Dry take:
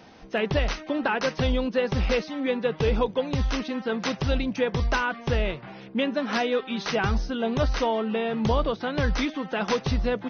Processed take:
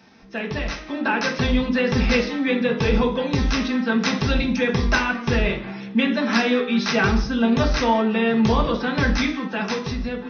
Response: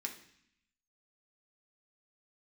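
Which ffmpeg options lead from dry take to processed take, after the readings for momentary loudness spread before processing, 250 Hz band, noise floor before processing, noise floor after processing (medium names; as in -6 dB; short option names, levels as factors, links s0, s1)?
4 LU, +7.5 dB, -45 dBFS, -35 dBFS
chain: -filter_complex "[1:a]atrim=start_sample=2205,afade=t=out:st=0.27:d=0.01,atrim=end_sample=12348[s0];[0:a][s0]afir=irnorm=-1:irlink=0,dynaudnorm=f=200:g=11:m=2.51"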